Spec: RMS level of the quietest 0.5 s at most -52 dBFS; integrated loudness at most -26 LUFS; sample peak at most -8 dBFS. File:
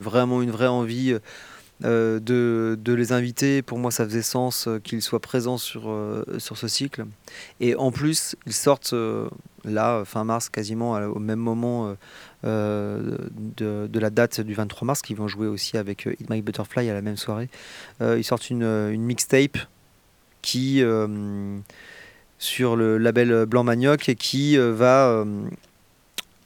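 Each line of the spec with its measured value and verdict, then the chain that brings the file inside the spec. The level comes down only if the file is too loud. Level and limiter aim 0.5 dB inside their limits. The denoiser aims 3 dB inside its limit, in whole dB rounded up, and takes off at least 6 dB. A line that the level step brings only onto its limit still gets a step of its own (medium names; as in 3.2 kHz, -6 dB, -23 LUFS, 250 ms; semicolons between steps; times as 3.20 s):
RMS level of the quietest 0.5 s -58 dBFS: pass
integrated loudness -23.5 LUFS: fail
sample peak -3.0 dBFS: fail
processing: trim -3 dB; peak limiter -8.5 dBFS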